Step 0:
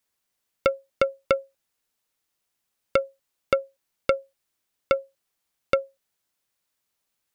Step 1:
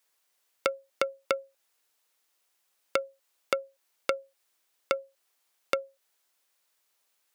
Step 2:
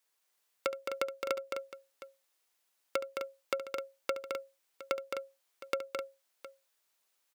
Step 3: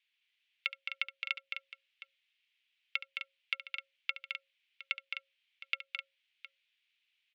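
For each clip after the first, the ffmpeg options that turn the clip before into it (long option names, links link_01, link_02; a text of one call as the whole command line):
ffmpeg -i in.wav -af "highpass=410,acompressor=threshold=-33dB:ratio=3,volume=5dB" out.wav
ffmpeg -i in.wav -filter_complex "[0:a]asplit=2[link_01][link_02];[link_02]aeval=exprs='(mod(6.68*val(0)+1,2)-1)/6.68':channel_layout=same,volume=-11dB[link_03];[link_01][link_03]amix=inputs=2:normalize=0,aecho=1:1:70|215|257|713:0.211|0.531|0.376|0.158,volume=-7dB" out.wav
ffmpeg -i in.wav -af "asuperpass=centerf=2700:order=4:qfactor=2.1,volume=9.5dB" out.wav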